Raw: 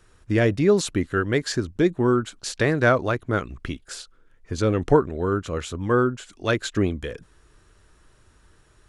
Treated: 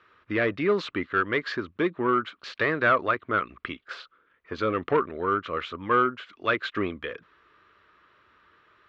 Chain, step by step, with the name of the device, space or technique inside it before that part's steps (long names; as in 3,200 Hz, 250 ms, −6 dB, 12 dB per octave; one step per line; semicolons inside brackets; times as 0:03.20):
0:03.88–0:04.57: dynamic equaliser 760 Hz, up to +7 dB, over −50 dBFS, Q 0.77
overdrive pedal into a guitar cabinet (mid-hump overdrive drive 15 dB, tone 6,000 Hz, clips at −4.5 dBFS; loudspeaker in its box 86–3,600 Hz, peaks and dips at 130 Hz −5 dB, 780 Hz −6 dB, 1,200 Hz +8 dB, 2,100 Hz +3 dB)
level −8 dB